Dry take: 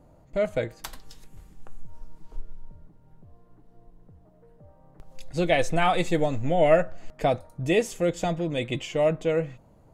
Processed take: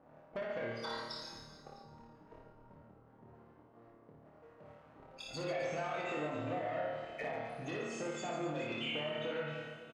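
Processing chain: loudest bins only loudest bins 32; tilt +2 dB/oct; compressor 6:1, threshold -33 dBFS, peak gain reduction 16.5 dB; sample leveller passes 3; HPF 350 Hz 6 dB/oct; on a send: flutter echo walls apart 4.5 m, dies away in 0.53 s; on the sum: Schroeder reverb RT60 2 s, combs from 27 ms, DRR 8.5 dB; treble ducked by the level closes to 2300 Hz, closed at -24.5 dBFS; limiter -24 dBFS, peak gain reduction 8 dB; reverse bouncing-ball echo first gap 60 ms, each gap 1.4×, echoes 5; mismatched tape noise reduction decoder only; gain -8 dB

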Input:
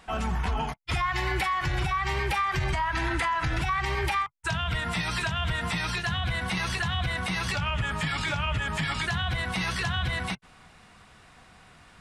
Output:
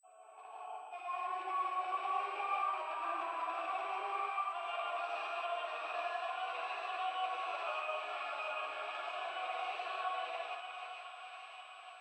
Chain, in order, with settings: opening faded in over 1.84 s; in parallel at -6.5 dB: hard clip -31 dBFS, distortion -8 dB; on the sum: flange 1.1 Hz, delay 7.3 ms, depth 6.8 ms, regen +86%; on a send: thinning echo 0.519 s, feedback 80%, high-pass 620 Hz, level -6.5 dB; on the sum: grains 0.1 s, grains 20/s, pitch spread up and down by 0 st; vowel filter a; high shelf 5400 Hz -8.5 dB; non-linear reverb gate 0.21 s rising, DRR -3.5 dB; whine 8000 Hz -74 dBFS; steep high-pass 300 Hz 96 dB/oct; gain +1 dB

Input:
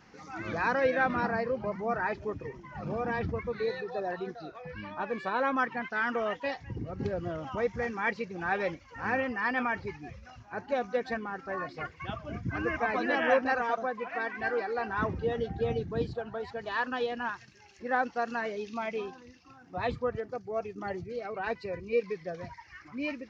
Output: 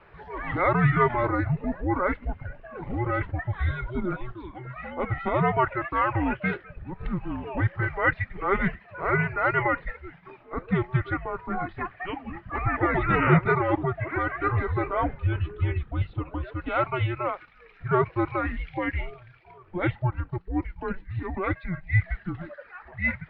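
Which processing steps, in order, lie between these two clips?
dynamic EQ 2400 Hz, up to +7 dB, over -55 dBFS, Q 5.3; mistuned SSB -370 Hz 320–3400 Hz; gain +6 dB

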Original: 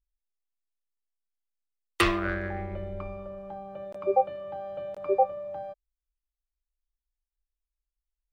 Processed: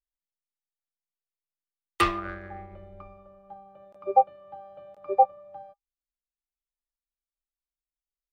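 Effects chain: small resonant body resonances 810/1200 Hz, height 12 dB, ringing for 95 ms; upward expander 1.5:1, over -42 dBFS

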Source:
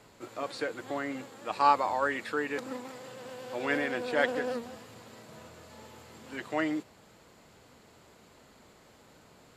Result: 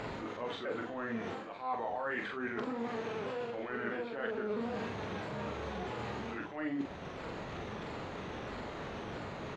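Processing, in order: repeated pitch sweeps -3.5 st, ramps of 0.652 s; LPF 2800 Hz 12 dB/oct; in parallel at +2 dB: upward compressor, threshold -35 dBFS; on the sum: transient shaper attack -9 dB, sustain +3 dB; reverse; compressor 8:1, threshold -37 dBFS, peak gain reduction 21.5 dB; reverse; doubler 43 ms -4 dB; gain +1 dB

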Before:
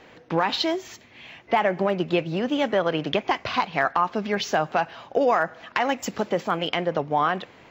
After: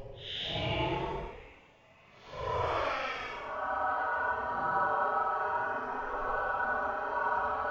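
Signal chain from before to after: spectral repair 3.4–3.95, 270–8300 Hz after; ring modulator 260 Hz; Paulstretch 13×, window 0.05 s, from 3.1; gain -9 dB

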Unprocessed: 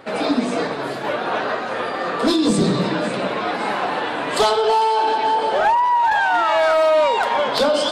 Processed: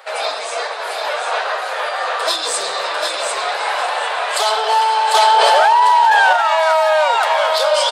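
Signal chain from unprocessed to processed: inverse Chebyshev high-pass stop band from 280 Hz, stop band 40 dB; high shelf 4800 Hz +7.5 dB; feedback echo 0.747 s, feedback 25%, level -5 dB; maximiser +7.5 dB; 5.14–6.33 fast leveller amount 100%; gain -5 dB

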